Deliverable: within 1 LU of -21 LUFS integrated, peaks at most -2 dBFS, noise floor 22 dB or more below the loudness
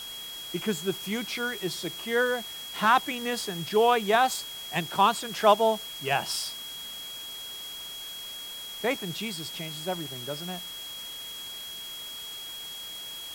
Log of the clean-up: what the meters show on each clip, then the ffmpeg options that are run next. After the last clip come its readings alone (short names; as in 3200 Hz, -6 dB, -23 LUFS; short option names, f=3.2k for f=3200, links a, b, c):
steady tone 3300 Hz; tone level -38 dBFS; noise floor -40 dBFS; noise floor target -51 dBFS; loudness -29.0 LUFS; peak -8.0 dBFS; loudness target -21.0 LUFS
-> -af "bandreject=f=3.3k:w=30"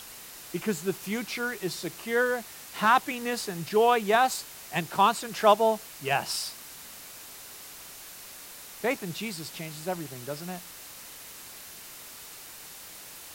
steady tone none; noise floor -45 dBFS; noise floor target -50 dBFS
-> -af "afftdn=nr=6:nf=-45"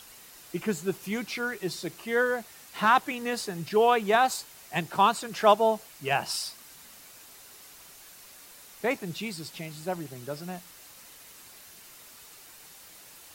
noise floor -51 dBFS; loudness -28.0 LUFS; peak -8.0 dBFS; loudness target -21.0 LUFS
-> -af "volume=7dB,alimiter=limit=-2dB:level=0:latency=1"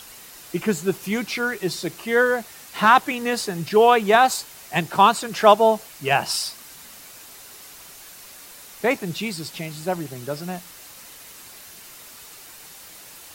loudness -21.0 LUFS; peak -2.0 dBFS; noise floor -44 dBFS